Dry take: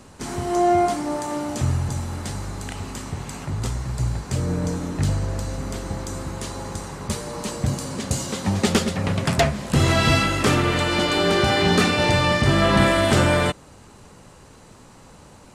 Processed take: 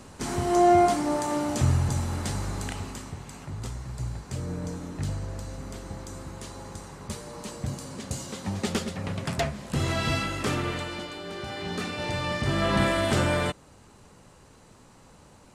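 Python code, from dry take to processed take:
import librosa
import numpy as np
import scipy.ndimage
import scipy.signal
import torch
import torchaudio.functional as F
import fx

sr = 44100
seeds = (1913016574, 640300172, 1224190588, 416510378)

y = fx.gain(x, sr, db=fx.line((2.63, -0.5), (3.2, -9.0), (10.69, -9.0), (11.21, -19.0), (12.73, -6.5)))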